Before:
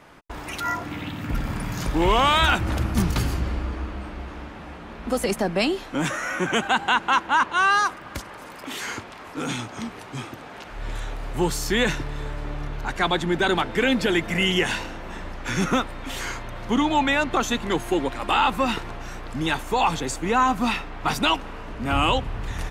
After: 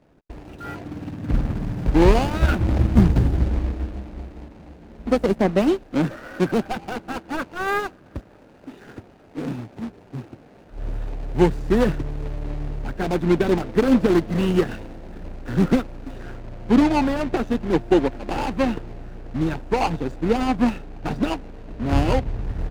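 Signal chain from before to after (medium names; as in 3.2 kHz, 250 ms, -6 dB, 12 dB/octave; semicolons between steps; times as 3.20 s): median filter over 41 samples; treble shelf 9.1 kHz -6.5 dB, from 16.16 s -11.5 dB; upward expansion 1.5:1, over -43 dBFS; trim +9 dB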